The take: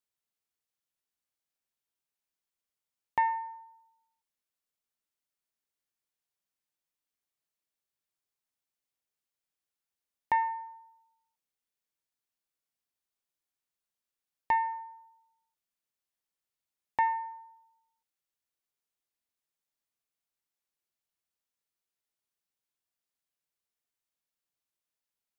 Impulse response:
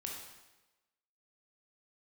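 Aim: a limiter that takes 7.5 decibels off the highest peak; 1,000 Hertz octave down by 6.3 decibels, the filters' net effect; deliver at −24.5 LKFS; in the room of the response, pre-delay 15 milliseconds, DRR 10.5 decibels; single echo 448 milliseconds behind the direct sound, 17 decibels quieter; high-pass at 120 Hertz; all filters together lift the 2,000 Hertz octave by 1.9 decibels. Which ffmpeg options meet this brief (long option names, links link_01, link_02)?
-filter_complex "[0:a]highpass=120,equalizer=frequency=1000:width_type=o:gain=-7.5,equalizer=frequency=2000:width_type=o:gain=4,alimiter=level_in=3.5dB:limit=-24dB:level=0:latency=1,volume=-3.5dB,aecho=1:1:448:0.141,asplit=2[link_01][link_02];[1:a]atrim=start_sample=2205,adelay=15[link_03];[link_02][link_03]afir=irnorm=-1:irlink=0,volume=-9.5dB[link_04];[link_01][link_04]amix=inputs=2:normalize=0,volume=17dB"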